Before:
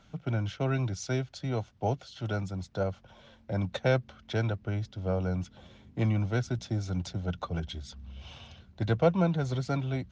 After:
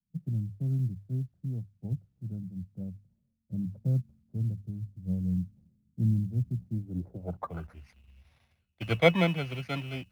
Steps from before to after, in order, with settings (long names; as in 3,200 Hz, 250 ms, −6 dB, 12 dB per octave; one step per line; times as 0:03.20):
samples in bit-reversed order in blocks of 16 samples
high-shelf EQ 4,800 Hz +4 dB
mains-hum notches 50/100 Hz
in parallel at −10.5 dB: bit reduction 7 bits
on the sum: dynamic equaliser 1,200 Hz, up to +4 dB, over −55 dBFS, Q 6.5
low-pass filter sweep 180 Hz → 2,400 Hz, 0:06.69–0:07.85
log-companded quantiser 8 bits
multiband upward and downward expander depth 70%
level −6 dB